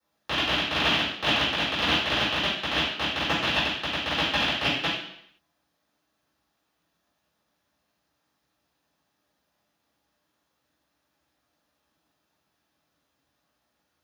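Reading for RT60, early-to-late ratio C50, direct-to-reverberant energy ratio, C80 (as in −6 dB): 0.70 s, 2.0 dB, −12.5 dB, 5.5 dB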